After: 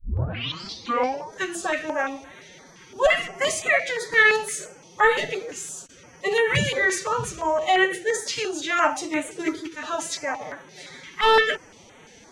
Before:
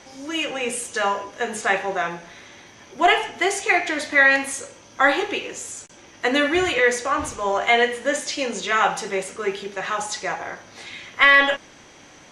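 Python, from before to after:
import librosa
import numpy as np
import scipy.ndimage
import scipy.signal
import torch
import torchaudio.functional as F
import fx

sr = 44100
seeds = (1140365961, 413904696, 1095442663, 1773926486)

y = fx.tape_start_head(x, sr, length_s=1.32)
y = fx.pitch_keep_formants(y, sr, semitones=8.0)
y = fx.filter_held_notch(y, sr, hz=5.8, low_hz=650.0, high_hz=5000.0)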